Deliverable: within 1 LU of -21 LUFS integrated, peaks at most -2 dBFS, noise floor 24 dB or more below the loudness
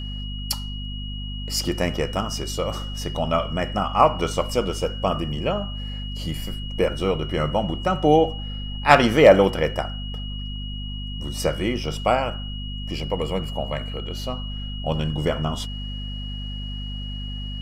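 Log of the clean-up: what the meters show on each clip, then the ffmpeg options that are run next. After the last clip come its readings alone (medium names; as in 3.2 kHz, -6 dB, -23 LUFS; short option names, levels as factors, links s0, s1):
hum 50 Hz; highest harmonic 250 Hz; hum level -29 dBFS; steady tone 2.9 kHz; tone level -36 dBFS; loudness -24.0 LUFS; peak level -1.5 dBFS; loudness target -21.0 LUFS
-> -af "bandreject=f=50:t=h:w=4,bandreject=f=100:t=h:w=4,bandreject=f=150:t=h:w=4,bandreject=f=200:t=h:w=4,bandreject=f=250:t=h:w=4"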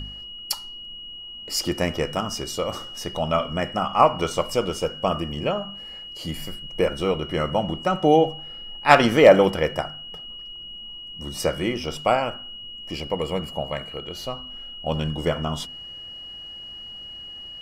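hum not found; steady tone 2.9 kHz; tone level -36 dBFS
-> -af "bandreject=f=2900:w=30"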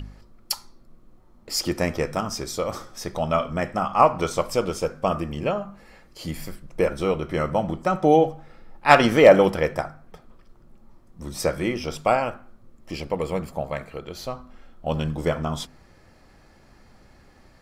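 steady tone not found; loudness -23.0 LUFS; peak level -1.5 dBFS; loudness target -21.0 LUFS
-> -af "volume=1.26,alimiter=limit=0.794:level=0:latency=1"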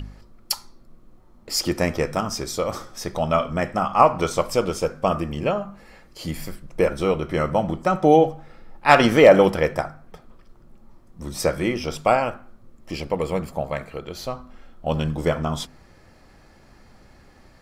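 loudness -21.5 LUFS; peak level -2.0 dBFS; noise floor -52 dBFS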